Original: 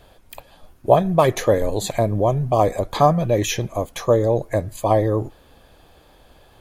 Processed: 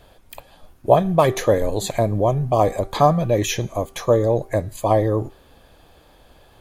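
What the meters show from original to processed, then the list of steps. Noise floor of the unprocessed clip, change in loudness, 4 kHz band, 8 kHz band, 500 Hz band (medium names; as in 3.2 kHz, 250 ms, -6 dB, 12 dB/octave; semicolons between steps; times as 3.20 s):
-52 dBFS, 0.0 dB, 0.0 dB, 0.0 dB, 0.0 dB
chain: de-hum 389.1 Hz, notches 30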